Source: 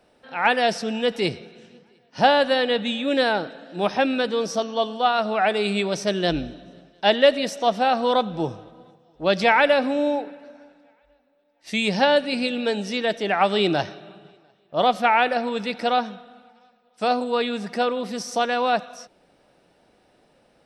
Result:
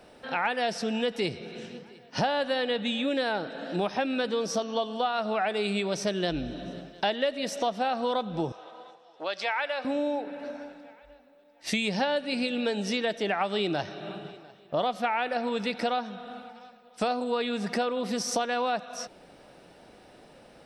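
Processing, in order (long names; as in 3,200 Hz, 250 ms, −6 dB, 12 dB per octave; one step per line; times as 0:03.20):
downward compressor 5 to 1, threshold −34 dBFS, peak gain reduction 20 dB
0:08.52–0:09.85: band-pass filter 690–7,500 Hz
level +7 dB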